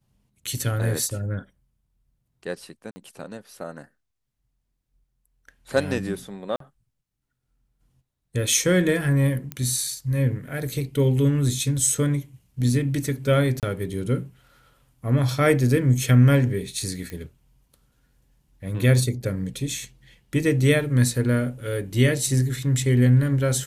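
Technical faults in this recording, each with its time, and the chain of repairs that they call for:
2.91–2.96 s: dropout 50 ms
6.56–6.60 s: dropout 43 ms
9.52 s: pop -15 dBFS
13.60–13.63 s: dropout 28 ms
17.10 s: pop -20 dBFS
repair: de-click; interpolate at 2.91 s, 50 ms; interpolate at 6.56 s, 43 ms; interpolate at 13.60 s, 28 ms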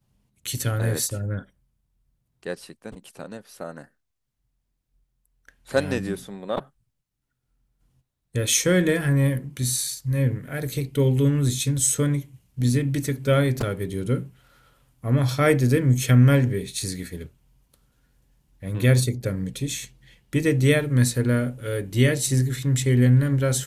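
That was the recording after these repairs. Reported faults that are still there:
nothing left

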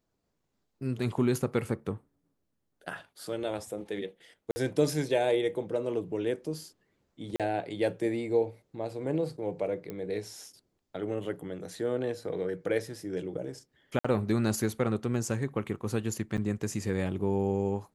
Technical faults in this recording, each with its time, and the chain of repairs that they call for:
4.51–4.56 s: dropout 50 ms
7.36–7.40 s: dropout 37 ms
9.90 s: pop -24 dBFS
13.99–14.04 s: dropout 55 ms
16.37–16.38 s: dropout 8.3 ms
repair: de-click; interpolate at 4.51 s, 50 ms; interpolate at 7.36 s, 37 ms; interpolate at 13.99 s, 55 ms; interpolate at 16.37 s, 8.3 ms

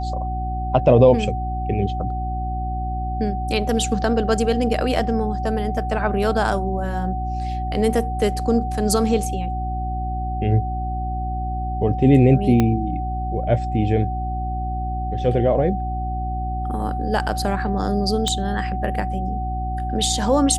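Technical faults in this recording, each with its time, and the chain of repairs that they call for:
hum 60 Hz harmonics 6 -26 dBFS
whine 750 Hz -27 dBFS
12.60 s: pop -6 dBFS
18.28 s: pop -10 dBFS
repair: de-click; band-stop 750 Hz, Q 30; de-hum 60 Hz, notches 6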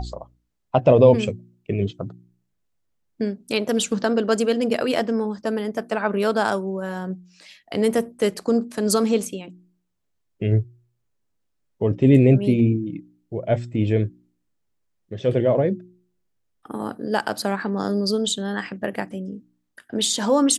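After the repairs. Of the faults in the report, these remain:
12.60 s: pop

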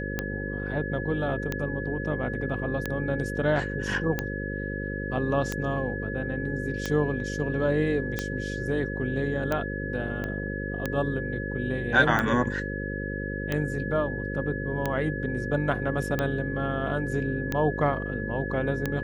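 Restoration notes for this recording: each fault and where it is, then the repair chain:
buzz 50 Hz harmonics 11 -33 dBFS
tick 45 rpm -13 dBFS
whine 1.7 kHz -35 dBFS
10.24 s: pop -20 dBFS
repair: de-click; band-stop 1.7 kHz, Q 30; de-hum 50 Hz, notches 11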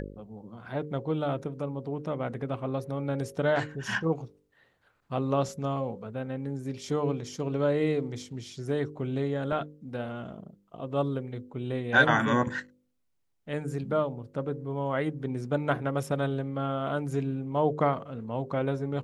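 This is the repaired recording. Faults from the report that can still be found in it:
10.24 s: pop

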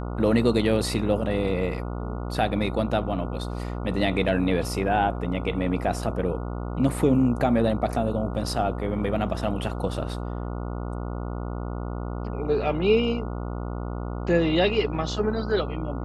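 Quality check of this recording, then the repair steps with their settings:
buzz 60 Hz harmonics 24 -31 dBFS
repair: de-hum 60 Hz, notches 24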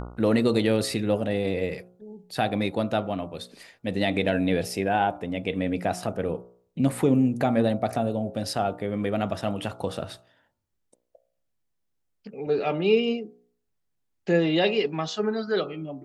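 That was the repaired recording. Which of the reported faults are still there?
nothing left

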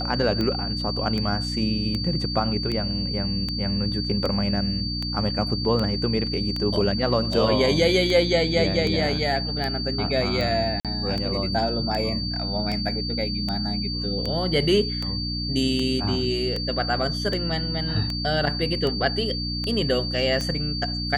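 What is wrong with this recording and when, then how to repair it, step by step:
hum 60 Hz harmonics 5 -30 dBFS
tick 78 rpm -15 dBFS
whine 4.6 kHz -29 dBFS
10.80–10.85 s: dropout 47 ms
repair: de-click; de-hum 60 Hz, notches 5; band-stop 4.6 kHz, Q 30; interpolate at 10.80 s, 47 ms

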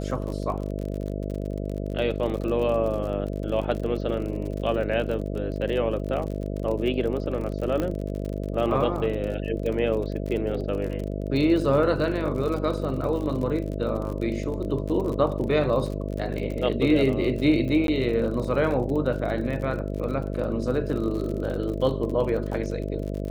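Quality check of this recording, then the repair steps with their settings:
buzz 50 Hz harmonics 13 -30 dBFS
crackle 45 per s -31 dBFS
7.80 s: pop -15 dBFS
17.87–17.88 s: dropout 12 ms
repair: de-click; de-hum 50 Hz, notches 13; interpolate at 17.87 s, 12 ms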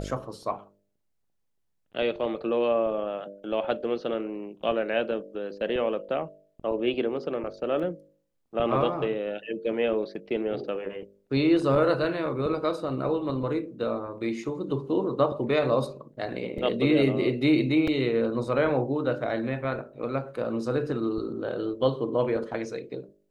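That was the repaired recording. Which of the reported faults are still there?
7.80 s: pop

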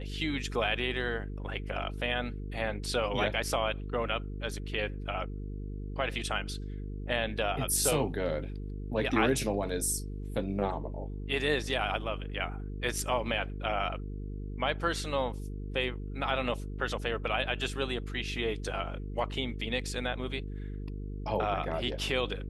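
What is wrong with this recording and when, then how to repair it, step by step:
buzz 50 Hz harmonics 9 -38 dBFS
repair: de-hum 50 Hz, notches 9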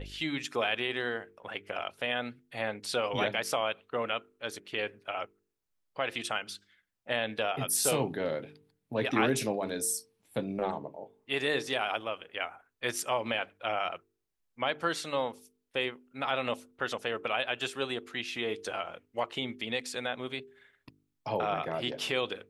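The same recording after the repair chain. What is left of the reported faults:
nothing left

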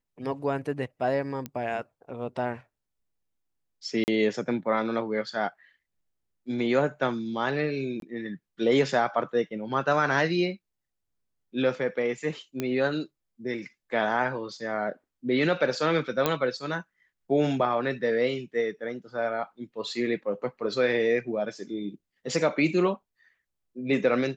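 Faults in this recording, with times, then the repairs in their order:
1.46 s: pop -19 dBFS
4.04–4.08 s: dropout 39 ms
8.00–8.02 s: dropout 22 ms
12.60 s: pop -15 dBFS
16.26 s: pop -9 dBFS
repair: de-click; interpolate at 4.04 s, 39 ms; interpolate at 8.00 s, 22 ms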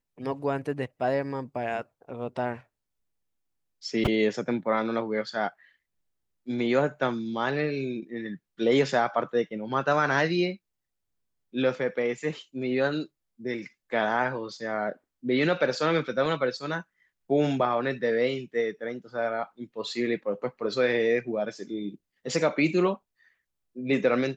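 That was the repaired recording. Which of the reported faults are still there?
1.46 s: pop

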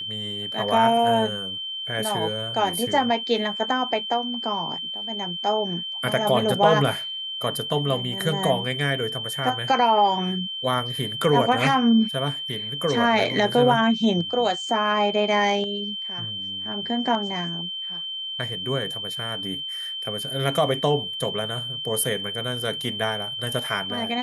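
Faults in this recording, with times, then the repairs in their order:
whine 3.1 kHz -29 dBFS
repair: band-stop 3.1 kHz, Q 30

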